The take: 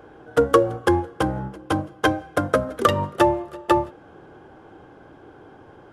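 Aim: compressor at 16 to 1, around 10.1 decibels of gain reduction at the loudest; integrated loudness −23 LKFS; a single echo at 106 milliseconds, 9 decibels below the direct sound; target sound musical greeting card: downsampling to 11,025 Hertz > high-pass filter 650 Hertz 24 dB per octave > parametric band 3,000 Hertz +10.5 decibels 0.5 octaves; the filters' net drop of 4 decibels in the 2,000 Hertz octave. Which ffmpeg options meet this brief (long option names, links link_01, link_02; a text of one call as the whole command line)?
ffmpeg -i in.wav -af "equalizer=frequency=2000:width_type=o:gain=-8,acompressor=threshold=-22dB:ratio=16,aecho=1:1:106:0.355,aresample=11025,aresample=44100,highpass=frequency=650:width=0.5412,highpass=frequency=650:width=1.3066,equalizer=frequency=3000:width_type=o:width=0.5:gain=10.5,volume=10.5dB" out.wav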